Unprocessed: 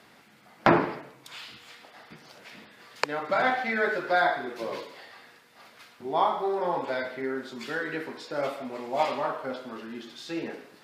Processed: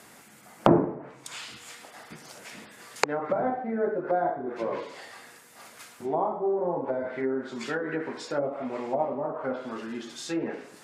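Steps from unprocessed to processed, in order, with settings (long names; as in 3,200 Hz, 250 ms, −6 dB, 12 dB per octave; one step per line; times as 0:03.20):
treble cut that deepens with the level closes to 560 Hz, closed at −25.5 dBFS
high shelf with overshoot 5,700 Hz +9.5 dB, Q 1.5
level +3.5 dB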